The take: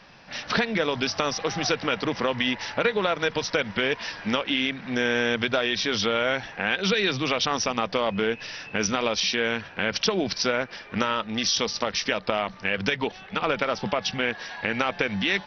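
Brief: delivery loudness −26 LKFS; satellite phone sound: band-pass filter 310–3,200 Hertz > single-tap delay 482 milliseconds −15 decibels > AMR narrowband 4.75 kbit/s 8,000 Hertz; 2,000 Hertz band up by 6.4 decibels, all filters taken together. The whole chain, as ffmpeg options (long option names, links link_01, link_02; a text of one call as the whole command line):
ffmpeg -i in.wav -af "highpass=310,lowpass=3200,equalizer=frequency=2000:width_type=o:gain=9,aecho=1:1:482:0.178,volume=-1dB" -ar 8000 -c:a libopencore_amrnb -b:a 4750 out.amr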